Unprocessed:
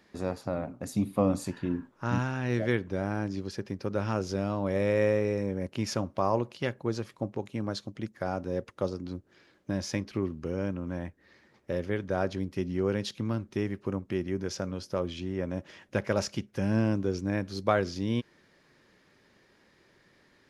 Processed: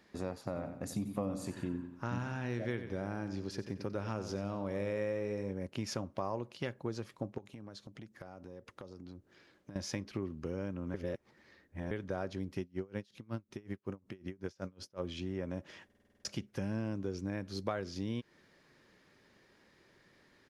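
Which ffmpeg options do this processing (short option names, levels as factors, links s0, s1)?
-filter_complex "[0:a]asplit=3[s0][s1][s2];[s0]afade=t=out:st=0.46:d=0.02[s3];[s1]aecho=1:1:91|182|273|364:0.266|0.101|0.0384|0.0146,afade=t=in:st=0.46:d=0.02,afade=t=out:st=5.52:d=0.02[s4];[s2]afade=t=in:st=5.52:d=0.02[s5];[s3][s4][s5]amix=inputs=3:normalize=0,asettb=1/sr,asplit=3[s6][s7][s8];[s6]atrim=end=7.384[s9];[s7]atrim=start=7.38:end=9.76,asetpts=PTS-STARTPTS,afade=t=in:d=0.004:c=qsin,afade=t=out:st=2.376:d=0.004:c=qsin,acompressor=threshold=0.00794:ratio=8:attack=3.2:release=140:knee=1:detection=peak[s10];[s8]atrim=start=9.756[s11];[s9][s10]acrossfade=d=0.004:c1=hsin:c2=qsin[s12];[s12][s11]acrossfade=d=0.004:c1=qsin:c2=hsin,asettb=1/sr,asplit=3[s13][s14][s15];[s13]atrim=end=12.614[s16];[s14]atrim=start=12.61:end=15.01,asetpts=PTS-STARTPTS,afade=t=in:d=0.004:c=qsin,afade=t=out:st=2.396:d=0.004:c=qsin,aeval=exprs='val(0)*pow(10,-30*(0.5-0.5*cos(2*PI*5.4*n/s))/20)':c=same[s17];[s15]atrim=start=15.006[s18];[s16][s17]acrossfade=d=0.004:c1=hsin:c2=qsin[s19];[s19][s18]acrossfade=d=0.004:c1=qsin:c2=hsin,asplit=11[s20][s21][s22][s23][s24][s25][s26][s27][s28][s29][s30];[s20]atrim=end=10.942[s31];[s21]atrim=start=10.938:end=11.912,asetpts=PTS-STARTPTS,areverse[s32];[s22]atrim=start=11.908:end=15.902[s33];[s23]atrim=start=15.848:end=15.902[s34];[s24]atrim=start=15.848:end=15.902[s35];[s25]atrim=start=15.848:end=15.902[s36];[s26]atrim=start=15.848:end=15.902[s37];[s27]atrim=start=15.848:end=15.902[s38];[s28]atrim=start=15.848:end=15.902[s39];[s29]atrim=start=15.848:end=15.902[s40];[s30]atrim=start=16.248[s41];[s31][s32]acrossfade=d=0.004:c1=hsin:c2=hsin[s42];[s42][s33]acrossfade=d=0.004:c1=hsin:c2=hsin[s43];[s43][s34]acrossfade=d=0.004:c1=hsin:c2=hsin[s44];[s44][s35]acrossfade=d=0.004:c1=hsin:c2=hsin[s45];[s45][s36]acrossfade=d=0.004:c1=hsin:c2=hsin[s46];[s46][s37]acrossfade=d=0.004:c1=hsin:c2=hsin[s47];[s47][s38]acrossfade=d=0.004:c1=hsin:c2=hsin[s48];[s48][s39]acrossfade=d=0.004:c1=hsin:c2=hsin[s49];[s49][s40]acrossfade=d=0.004:c1=hsin:c2=hsin[s50];[s50][s41]acrossfade=d=0.004:c1=hsin:c2=hsin,acompressor=threshold=0.0251:ratio=3,volume=0.75"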